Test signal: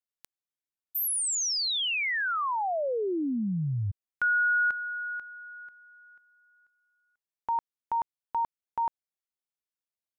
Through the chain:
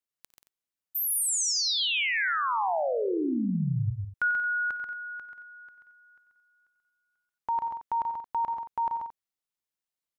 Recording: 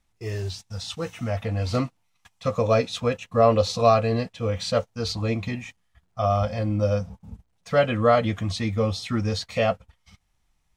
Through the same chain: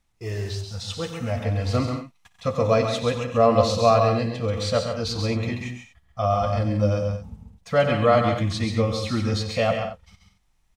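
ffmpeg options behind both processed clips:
ffmpeg -i in.wav -af "aecho=1:1:57|92|134|135|183|224:0.119|0.237|0.133|0.501|0.224|0.178" out.wav

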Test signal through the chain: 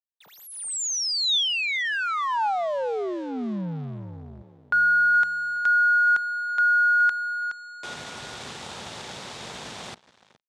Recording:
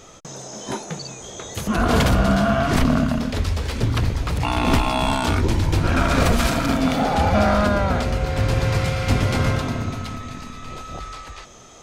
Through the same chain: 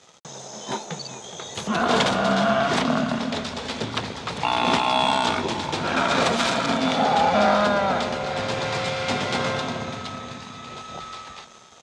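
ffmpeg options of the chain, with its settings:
ffmpeg -i in.wav -filter_complex "[0:a]acrossover=split=180|3900[link_01][link_02][link_03];[link_01]acompressor=threshold=-32dB:ratio=6[link_04];[link_04][link_02][link_03]amix=inputs=3:normalize=0,asplit=2[link_05][link_06];[link_06]adelay=420,lowpass=frequency=3300:poles=1,volume=-12.5dB,asplit=2[link_07][link_08];[link_08]adelay=420,lowpass=frequency=3300:poles=1,volume=0.45,asplit=2[link_09][link_10];[link_10]adelay=420,lowpass=frequency=3300:poles=1,volume=0.45,asplit=2[link_11][link_12];[link_12]adelay=420,lowpass=frequency=3300:poles=1,volume=0.45[link_13];[link_05][link_07][link_09][link_11][link_13]amix=inputs=5:normalize=0,aeval=exprs='sgn(val(0))*max(abs(val(0))-0.00562,0)':channel_layout=same,highpass=140,equalizer=frequency=300:width_type=q:width=4:gain=-7,equalizer=frequency=860:width_type=q:width=4:gain=4,equalizer=frequency=3600:width_type=q:width=4:gain=6,lowpass=frequency=8000:width=0.5412,lowpass=frequency=8000:width=1.3066" out.wav

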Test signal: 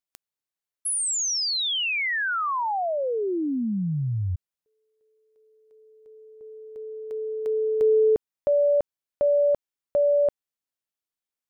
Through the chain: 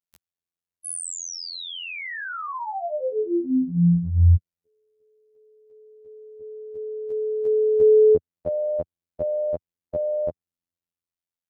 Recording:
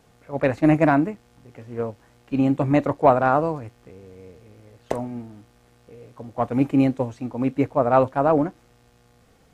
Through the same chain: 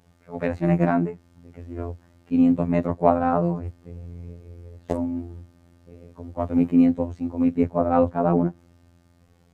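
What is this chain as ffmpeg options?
ffmpeg -i in.wav -filter_complex "[0:a]equalizer=frequency=110:width=0.97:gain=10,acrossover=split=550[link_01][link_02];[link_01]dynaudnorm=framelen=130:gausssize=11:maxgain=8.5dB[link_03];[link_03][link_02]amix=inputs=2:normalize=0,afftfilt=real='hypot(re,im)*cos(PI*b)':imag='0':win_size=2048:overlap=0.75,adynamicequalizer=threshold=0.0126:dfrequency=2400:dqfactor=0.7:tfrequency=2400:tqfactor=0.7:attack=5:release=100:ratio=0.417:range=2.5:mode=cutabove:tftype=highshelf,volume=-2.5dB" out.wav

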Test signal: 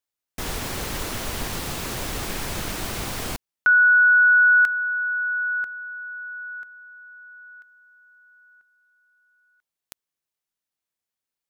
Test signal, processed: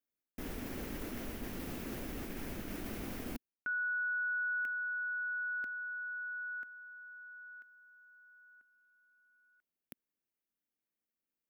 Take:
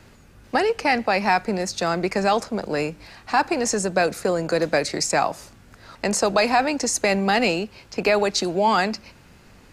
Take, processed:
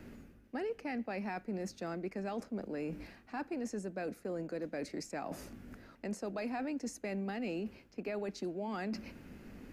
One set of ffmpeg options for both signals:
ffmpeg -i in.wav -af "equalizer=frequency=125:width_type=o:width=1:gain=-5,equalizer=frequency=250:width_type=o:width=1:gain=9,equalizer=frequency=1000:width_type=o:width=1:gain=-7,equalizer=frequency=4000:width_type=o:width=1:gain=-8,equalizer=frequency=8000:width_type=o:width=1:gain=-9,areverse,acompressor=threshold=-34dB:ratio=4:attack=0.79:release=462:knee=1:detection=peak,areverse,volume=-2.5dB" out.wav

